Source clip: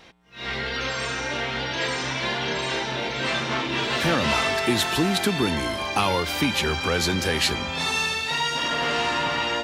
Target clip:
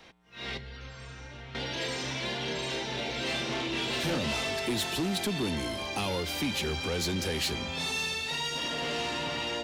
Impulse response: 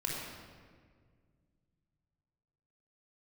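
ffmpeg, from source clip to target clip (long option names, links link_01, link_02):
-filter_complex "[0:a]asettb=1/sr,asplit=3[link_01][link_02][link_03];[link_01]atrim=end=0.574[link_04];[link_02]atrim=start=0.57:end=1.55,asetpts=PTS-STARTPTS,afade=type=in:duration=0.004:curve=qsin,afade=type=out:start_time=0.976:duration=0.004:curve=qsin,acrossover=split=140[link_05][link_06];[link_06]acompressor=threshold=-42dB:ratio=8[link_07];[link_05][link_07]amix=inputs=2:normalize=0[link_08];[link_03]atrim=start=1.546[link_09];[link_04][link_08]acrossfade=duration=0.004:curve1=hsin:curve2=qsin[link_10];[link_10][link_09]acrossfade=duration=0.004:curve1=qsin:curve2=hsin,asettb=1/sr,asplit=3[link_11][link_12][link_13];[link_11]atrim=end=2.874[link_14];[link_12]atrim=start=2.87:end=4.18,asetpts=PTS-STARTPTS,afade=type=in:duration=0.004:curve=qsin,afade=type=out:start_time=1.306:duration=0.004:curve=qsin,asplit=2[link_15][link_16];[link_16]adelay=33,volume=-3.5dB[link_17];[link_15][link_17]amix=inputs=2:normalize=0,atrim=end_sample=57771[link_18];[link_13]atrim=start=4.176[link_19];[link_14][link_18]acrossfade=duration=0.004:curve1=hsin:curve2=qsin[link_20];[link_20][link_19]acrossfade=duration=0.004:curve1=qsin:curve2=hsin,acrossover=split=130|810|2000[link_21][link_22][link_23][link_24];[link_23]acompressor=threshold=-45dB:ratio=6[link_25];[link_21][link_22][link_25][link_24]amix=inputs=4:normalize=0,asoftclip=type=tanh:threshold=-20.5dB,volume=-4dB"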